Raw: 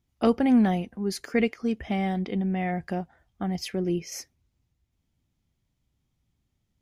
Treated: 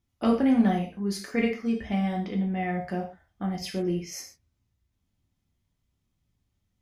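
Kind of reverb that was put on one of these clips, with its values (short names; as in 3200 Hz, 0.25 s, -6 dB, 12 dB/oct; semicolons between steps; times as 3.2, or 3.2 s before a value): non-linear reverb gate 0.16 s falling, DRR -0.5 dB; gain -4 dB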